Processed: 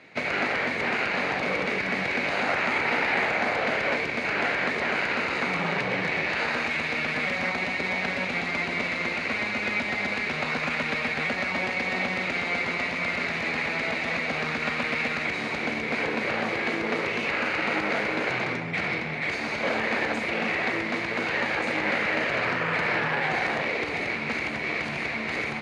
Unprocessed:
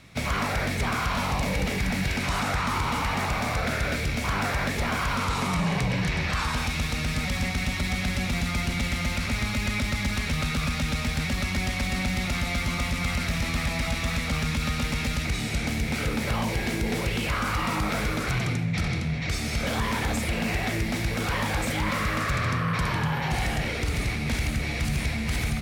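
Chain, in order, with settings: minimum comb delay 0.45 ms; in parallel at -8 dB: decimation with a swept rate 30×, swing 160% 0.25 Hz; on the sum: BPF 450–2600 Hz; gain +6.5 dB

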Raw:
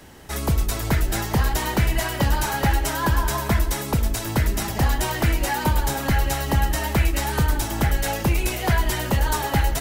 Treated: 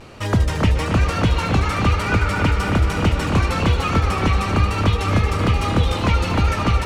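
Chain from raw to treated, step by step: vibrato 0.78 Hz 52 cents; wide varispeed 1.43×; air absorption 78 m; on a send: dark delay 0.274 s, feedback 69%, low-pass 3600 Hz, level -5.5 dB; on the sum: vocal rider within 3 dB; gain +2 dB

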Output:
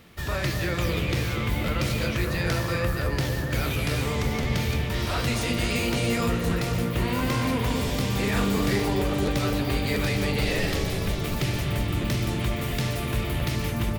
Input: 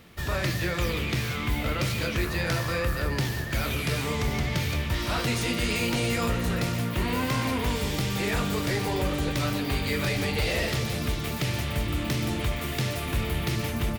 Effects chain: 8.3–8.88 doubler 45 ms -5 dB; 10.45–11.08 frequency shift -51 Hz; dark delay 0.242 s, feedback 73%, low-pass 830 Hz, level -5 dB; crackling interface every 0.69 s repeat, from 0.97

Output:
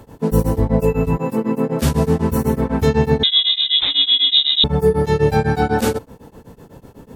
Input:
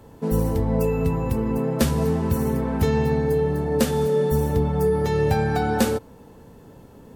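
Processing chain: 1.17–1.82 steep high-pass 150 Hz; 3.23–4.64 inverted band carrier 3800 Hz; beating tremolo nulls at 8 Hz; gain +8 dB

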